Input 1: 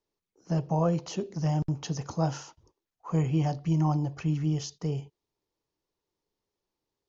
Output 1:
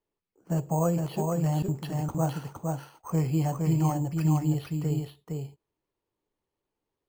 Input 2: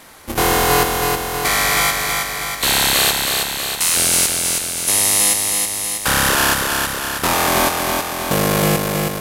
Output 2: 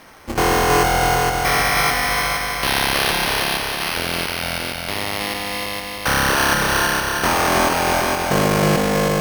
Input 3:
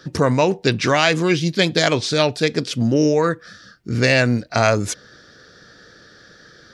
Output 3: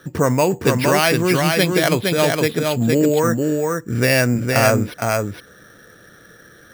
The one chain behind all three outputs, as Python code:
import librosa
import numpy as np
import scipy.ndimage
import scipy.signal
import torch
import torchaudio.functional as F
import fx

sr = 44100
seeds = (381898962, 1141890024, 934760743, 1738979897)

y = x + 10.0 ** (-3.5 / 20.0) * np.pad(x, (int(463 * sr / 1000.0), 0))[:len(x)]
y = np.repeat(scipy.signal.resample_poly(y, 1, 6), 6)[:len(y)]